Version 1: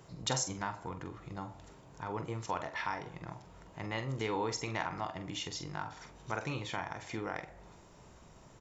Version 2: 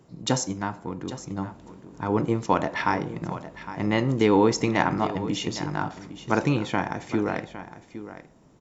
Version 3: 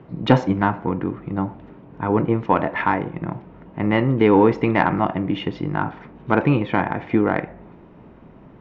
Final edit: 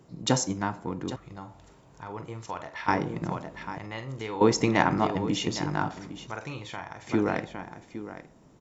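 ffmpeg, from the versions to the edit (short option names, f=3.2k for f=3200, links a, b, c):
-filter_complex "[0:a]asplit=3[a][b][c];[1:a]asplit=4[d][e][f][g];[d]atrim=end=1.162[h];[a]atrim=start=1.158:end=2.882[i];[e]atrim=start=2.878:end=3.782[j];[b]atrim=start=3.778:end=4.412[k];[f]atrim=start=4.408:end=6.272[l];[c]atrim=start=6.268:end=7.072[m];[g]atrim=start=7.068[n];[h][i]acrossfade=d=0.004:c1=hsin:c2=hsin[o];[o][j]acrossfade=d=0.004:c1=hsin:c2=hsin[p];[p][k]acrossfade=d=0.004:c1=hsin:c2=hsin[q];[q][l]acrossfade=d=0.004:c1=hsin:c2=hsin[r];[r][m]acrossfade=d=0.004:c1=hsin:c2=hsin[s];[s][n]acrossfade=d=0.004:c1=hsin:c2=hsin"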